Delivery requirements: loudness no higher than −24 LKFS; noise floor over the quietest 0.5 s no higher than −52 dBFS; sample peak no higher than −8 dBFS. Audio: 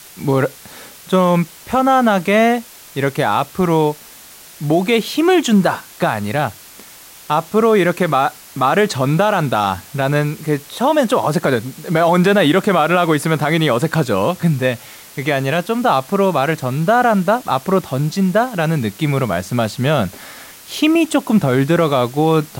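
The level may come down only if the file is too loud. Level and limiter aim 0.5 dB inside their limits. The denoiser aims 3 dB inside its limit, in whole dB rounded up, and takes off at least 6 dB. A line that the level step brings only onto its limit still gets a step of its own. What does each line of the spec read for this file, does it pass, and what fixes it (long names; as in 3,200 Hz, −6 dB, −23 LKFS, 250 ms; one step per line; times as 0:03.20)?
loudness −16.5 LKFS: out of spec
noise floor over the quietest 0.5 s −40 dBFS: out of spec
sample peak −4.0 dBFS: out of spec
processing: broadband denoise 7 dB, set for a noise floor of −40 dBFS
level −8 dB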